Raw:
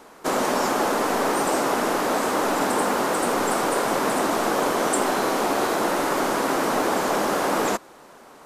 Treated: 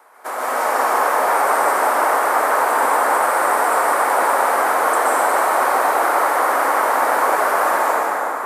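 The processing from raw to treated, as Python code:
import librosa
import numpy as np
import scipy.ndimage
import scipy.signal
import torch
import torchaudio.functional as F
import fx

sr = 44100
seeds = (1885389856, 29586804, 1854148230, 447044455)

y = scipy.signal.sosfilt(scipy.signal.cheby1(2, 1.0, 810.0, 'highpass', fs=sr, output='sos'), x)
y = fx.band_shelf(y, sr, hz=4400.0, db=-9.5, octaves=1.7)
y = fx.rev_plate(y, sr, seeds[0], rt60_s=4.9, hf_ratio=0.55, predelay_ms=110, drr_db=-8.0)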